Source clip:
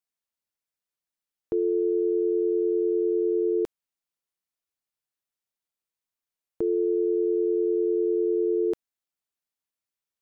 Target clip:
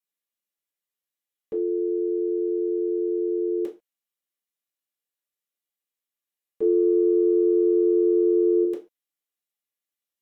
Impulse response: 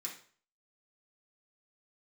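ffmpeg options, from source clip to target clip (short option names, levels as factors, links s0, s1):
-filter_complex "[0:a]asettb=1/sr,asplit=3[s0][s1][s2];[s0]atrim=end=6.614[s3];[s1]atrim=start=6.61:end=8.64,asetpts=PTS-STARTPTS,afade=t=in:d=0.004:c=qsin,afade=t=out:st=2.026:d=0.004:c=qsin,acontrast=40[s4];[s2]atrim=start=8.636[s5];[s3][s4]acrossfade=d=0.004:c1=hsin:c2=qsin[s6];[s6][s5]acrossfade=d=0.004:c1=qsin:c2=hsin[s7];[1:a]atrim=start_sample=2205,afade=t=out:st=0.29:d=0.01,atrim=end_sample=13230,asetrate=70560,aresample=44100[s8];[s7][s8]afir=irnorm=-1:irlink=0,volume=1.78"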